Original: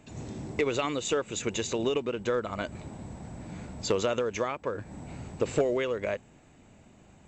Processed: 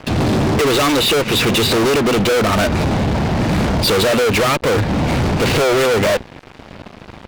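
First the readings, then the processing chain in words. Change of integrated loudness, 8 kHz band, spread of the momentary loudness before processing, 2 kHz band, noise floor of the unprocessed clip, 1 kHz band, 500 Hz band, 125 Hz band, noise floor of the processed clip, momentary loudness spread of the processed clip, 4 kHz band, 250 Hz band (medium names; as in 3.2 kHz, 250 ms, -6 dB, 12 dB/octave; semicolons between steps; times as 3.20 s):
+15.5 dB, +14.0 dB, 14 LU, +18.5 dB, -57 dBFS, +17.5 dB, +13.5 dB, +21.0 dB, -40 dBFS, 4 LU, +20.5 dB, +18.0 dB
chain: resampled via 11.025 kHz; hum notches 60/120/180/240 Hz; fuzz box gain 49 dB, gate -55 dBFS; upward expansion 1.5:1, over -28 dBFS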